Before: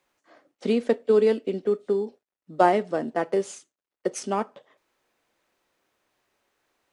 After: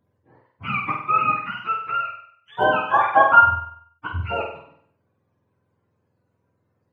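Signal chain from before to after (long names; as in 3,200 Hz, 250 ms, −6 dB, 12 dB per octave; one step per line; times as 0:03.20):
frequency axis turned over on the octave scale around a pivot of 740 Hz
gain on a spectral selection 0:02.82–0:03.41, 500–1,700 Hz +12 dB
flutter between parallel walls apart 8.3 metres, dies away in 0.61 s
level +1.5 dB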